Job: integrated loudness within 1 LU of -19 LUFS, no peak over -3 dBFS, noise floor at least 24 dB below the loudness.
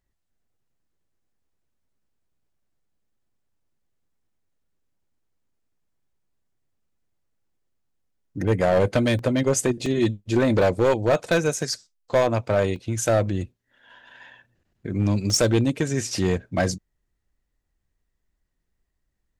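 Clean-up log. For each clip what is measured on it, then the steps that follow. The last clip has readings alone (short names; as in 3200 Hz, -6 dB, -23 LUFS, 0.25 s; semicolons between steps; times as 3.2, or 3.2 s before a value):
clipped 0.7%; flat tops at -13.5 dBFS; dropouts 6; longest dropout 1.5 ms; loudness -22.5 LUFS; peak -13.5 dBFS; loudness target -19.0 LUFS
-> clip repair -13.5 dBFS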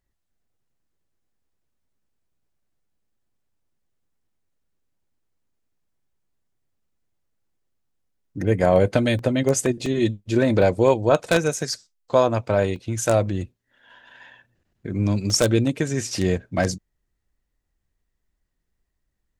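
clipped 0.0%; dropouts 6; longest dropout 1.5 ms
-> interpolate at 9.19/9.86/10.62/11.59/12.76/15.3, 1.5 ms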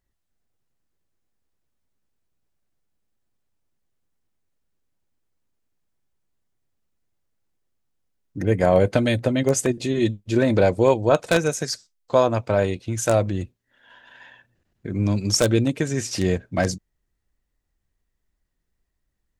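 dropouts 0; loudness -21.5 LUFS; peak -4.5 dBFS; loudness target -19.0 LUFS
-> gain +2.5 dB; limiter -3 dBFS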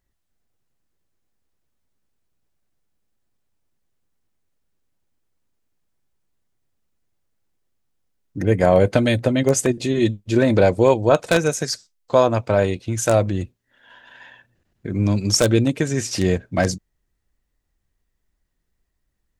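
loudness -19.0 LUFS; peak -3.0 dBFS; noise floor -74 dBFS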